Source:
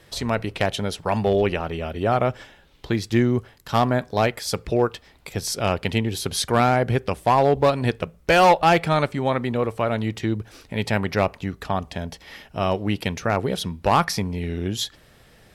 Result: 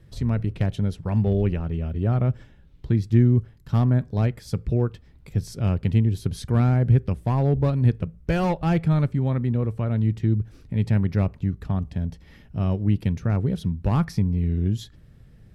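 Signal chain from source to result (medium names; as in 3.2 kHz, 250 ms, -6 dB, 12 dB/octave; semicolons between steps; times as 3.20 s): FFT filter 140 Hz 0 dB, 740 Hz -21 dB, 1.6 kHz -19 dB, 3.2 kHz -22 dB; trim +7 dB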